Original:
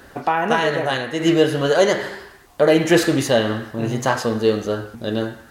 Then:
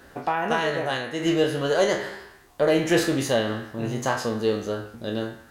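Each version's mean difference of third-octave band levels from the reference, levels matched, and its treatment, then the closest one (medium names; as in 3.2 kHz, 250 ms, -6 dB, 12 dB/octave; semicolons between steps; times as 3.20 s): 1.0 dB: spectral sustain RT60 0.32 s; in parallel at -12 dB: one-sided clip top -19 dBFS; on the sum: trim -8 dB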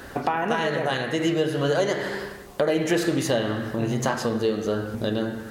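4.5 dB: compression 3:1, threshold -28 dBFS, peak gain reduction 13.5 dB; on a send: feedback echo behind a low-pass 85 ms, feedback 70%, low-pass 400 Hz, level -8 dB; on the sum: trim +4 dB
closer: first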